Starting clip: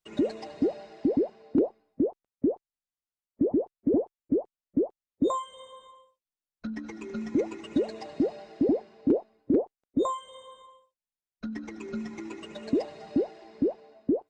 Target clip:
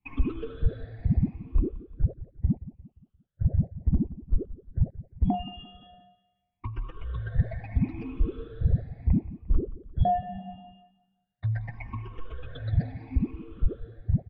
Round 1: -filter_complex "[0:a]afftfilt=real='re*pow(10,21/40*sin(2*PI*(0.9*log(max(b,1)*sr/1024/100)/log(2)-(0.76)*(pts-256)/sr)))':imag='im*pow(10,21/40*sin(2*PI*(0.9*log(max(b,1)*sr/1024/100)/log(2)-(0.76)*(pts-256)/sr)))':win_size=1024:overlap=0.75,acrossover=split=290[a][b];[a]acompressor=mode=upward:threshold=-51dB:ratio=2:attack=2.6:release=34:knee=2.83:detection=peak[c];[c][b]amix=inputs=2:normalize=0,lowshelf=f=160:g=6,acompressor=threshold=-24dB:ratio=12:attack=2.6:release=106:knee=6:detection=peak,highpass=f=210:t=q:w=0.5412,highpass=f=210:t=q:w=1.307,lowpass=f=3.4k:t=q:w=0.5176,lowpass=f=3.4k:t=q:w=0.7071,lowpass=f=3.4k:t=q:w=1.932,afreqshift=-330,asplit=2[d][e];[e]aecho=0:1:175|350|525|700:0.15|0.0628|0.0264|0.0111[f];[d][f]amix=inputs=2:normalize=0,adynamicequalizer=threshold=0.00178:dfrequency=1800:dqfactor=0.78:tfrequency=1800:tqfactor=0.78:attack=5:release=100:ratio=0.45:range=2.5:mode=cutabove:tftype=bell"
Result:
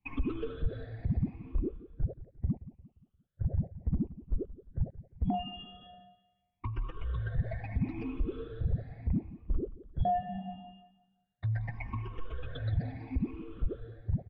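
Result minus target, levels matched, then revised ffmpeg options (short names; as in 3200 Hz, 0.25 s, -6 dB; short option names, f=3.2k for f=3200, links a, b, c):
compressor: peak gain reduction +8.5 dB
-filter_complex "[0:a]afftfilt=real='re*pow(10,21/40*sin(2*PI*(0.9*log(max(b,1)*sr/1024/100)/log(2)-(0.76)*(pts-256)/sr)))':imag='im*pow(10,21/40*sin(2*PI*(0.9*log(max(b,1)*sr/1024/100)/log(2)-(0.76)*(pts-256)/sr)))':win_size=1024:overlap=0.75,acrossover=split=290[a][b];[a]acompressor=mode=upward:threshold=-51dB:ratio=2:attack=2.6:release=34:knee=2.83:detection=peak[c];[c][b]amix=inputs=2:normalize=0,lowshelf=f=160:g=6,acompressor=threshold=-14.5dB:ratio=12:attack=2.6:release=106:knee=6:detection=peak,highpass=f=210:t=q:w=0.5412,highpass=f=210:t=q:w=1.307,lowpass=f=3.4k:t=q:w=0.5176,lowpass=f=3.4k:t=q:w=0.7071,lowpass=f=3.4k:t=q:w=1.932,afreqshift=-330,asplit=2[d][e];[e]aecho=0:1:175|350|525|700:0.15|0.0628|0.0264|0.0111[f];[d][f]amix=inputs=2:normalize=0,adynamicequalizer=threshold=0.00178:dfrequency=1800:dqfactor=0.78:tfrequency=1800:tqfactor=0.78:attack=5:release=100:ratio=0.45:range=2.5:mode=cutabove:tftype=bell"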